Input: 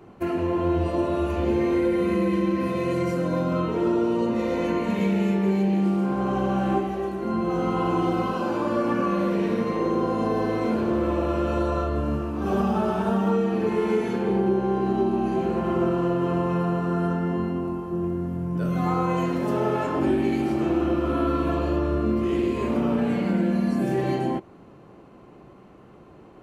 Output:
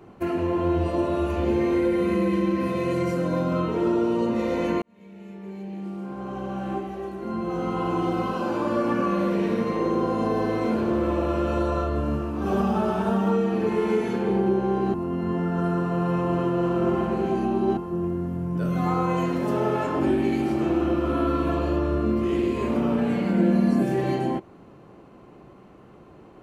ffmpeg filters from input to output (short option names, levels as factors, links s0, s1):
-filter_complex "[0:a]asettb=1/sr,asplit=3[s0][s1][s2];[s0]atrim=end=23.374[s3];[s1]atrim=start=23.37:end=23.83,asetpts=PTS-STARTPTS,afade=t=in:d=0.004:c=qsin,afade=t=out:st=0.456:d=0.004:c=qsin,equalizer=f=360:w=0.47:g=4[s4];[s2]atrim=start=23.826[s5];[s3][s4]acrossfade=d=0.004:c1=hsin:c2=qsin[s6];[s6][s5]acrossfade=d=0.004:c1=qsin:c2=hsin,asplit=4[s7][s8][s9][s10];[s7]atrim=end=4.82,asetpts=PTS-STARTPTS,afade=t=out:st=4.816:d=0.004:c=hsin[s11];[s8]atrim=start=4.82:end=14.942,asetpts=PTS-STARTPTS,afade=t=in:d=3.88[s12];[s9]atrim=start=14.938:end=17.772,asetpts=PTS-STARTPTS,areverse[s13];[s10]atrim=start=17.768[s14];[s11][s12]concat=n=2:v=0:a=1[s15];[s15][s13]acrossfade=d=0.004:c1=hsin:c2=hsin[s16];[s16][s14]acrossfade=d=0.004:c1=hsin:c2=hsin"